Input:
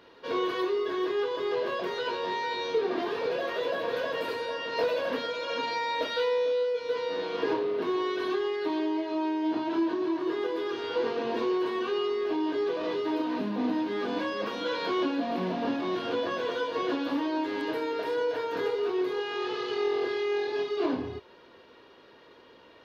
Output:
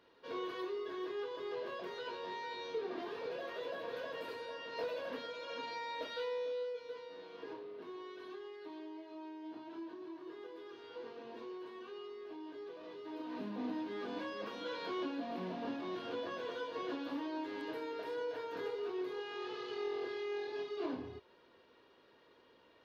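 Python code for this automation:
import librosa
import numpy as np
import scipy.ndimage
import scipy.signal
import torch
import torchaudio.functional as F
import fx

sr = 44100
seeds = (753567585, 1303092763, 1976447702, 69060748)

y = fx.gain(x, sr, db=fx.line((6.68, -12.0), (7.09, -19.0), (12.97, -19.0), (13.43, -11.0)))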